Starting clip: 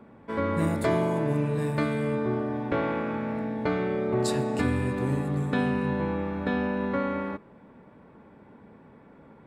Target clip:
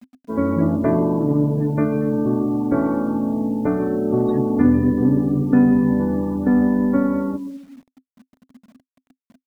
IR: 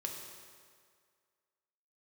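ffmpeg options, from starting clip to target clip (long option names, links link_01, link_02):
-filter_complex "[0:a]lowpass=frequency=1200:poles=1,asplit=2[link_01][link_02];[1:a]atrim=start_sample=2205,adelay=143[link_03];[link_02][link_03]afir=irnorm=-1:irlink=0,volume=-11dB[link_04];[link_01][link_04]amix=inputs=2:normalize=0,afftdn=noise_reduction=32:noise_floor=-35,acrusher=bits=9:mix=0:aa=0.000001,equalizer=frequency=260:width=5.1:gain=13.5,aeval=exprs='0.376*(cos(1*acos(clip(val(0)/0.376,-1,1)))-cos(1*PI/2))+0.00299*(cos(6*acos(clip(val(0)/0.376,-1,1)))-cos(6*PI/2))+0.00473*(cos(8*acos(clip(val(0)/0.376,-1,1)))-cos(8*PI/2))':channel_layout=same,volume=5dB"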